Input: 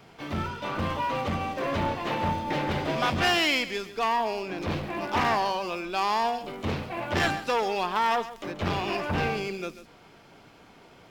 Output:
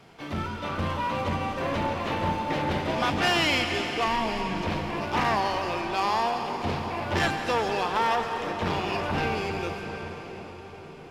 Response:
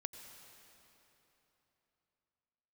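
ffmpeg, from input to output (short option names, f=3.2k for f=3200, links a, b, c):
-filter_complex "[0:a]asplit=3[a][b][c];[a]afade=t=out:st=4.05:d=0.02[d];[b]asubboost=boost=9:cutoff=150,afade=t=in:st=4.05:d=0.02,afade=t=out:st=4.61:d=0.02[e];[c]afade=t=in:st=4.61:d=0.02[f];[d][e][f]amix=inputs=3:normalize=0[g];[1:a]atrim=start_sample=2205,asetrate=24255,aresample=44100[h];[g][h]afir=irnorm=-1:irlink=0"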